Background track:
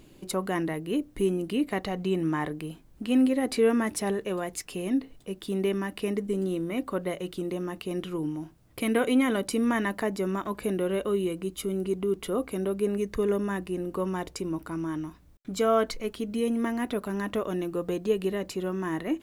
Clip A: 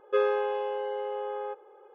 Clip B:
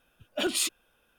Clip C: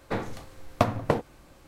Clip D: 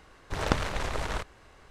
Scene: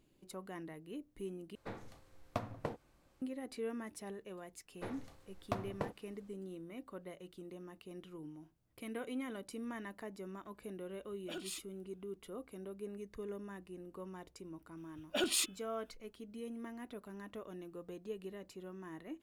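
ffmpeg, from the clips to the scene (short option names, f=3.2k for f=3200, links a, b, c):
-filter_complex "[3:a]asplit=2[a][b];[2:a]asplit=2[c][d];[0:a]volume=-18dB[e];[d]bandreject=f=430.8:t=h:w=4,bandreject=f=861.6:t=h:w=4,bandreject=f=1.2924k:t=h:w=4,bandreject=f=1.7232k:t=h:w=4,bandreject=f=2.154k:t=h:w=4,bandreject=f=2.5848k:t=h:w=4,bandreject=f=3.0156k:t=h:w=4,bandreject=f=3.4464k:t=h:w=4[f];[e]asplit=2[g][h];[g]atrim=end=1.554[i];[a]atrim=end=1.67,asetpts=PTS-STARTPTS,volume=-16dB[j];[h]atrim=start=3.216[k];[b]atrim=end=1.67,asetpts=PTS-STARTPTS,volume=-15.5dB,afade=t=in:d=0.1,afade=t=out:st=1.57:d=0.1,adelay=4710[l];[c]atrim=end=1.18,asetpts=PTS-STARTPTS,volume=-17dB,afade=t=in:d=0.004:c=hsin,afade=t=out:st=1.176:d=0.004:c=hsin,adelay=10910[m];[f]atrim=end=1.18,asetpts=PTS-STARTPTS,volume=-5.5dB,afade=t=in:d=0.004:c=hsin,afade=t=out:st=1.176:d=0.004:c=hsin,adelay=14770[n];[i][j]acrossfade=d=0.004:c1=hsin:c2=hsin[o];[o][k]acrossfade=d=0.004:c1=hsin:c2=hsin[p];[p][l][m][n]amix=inputs=4:normalize=0"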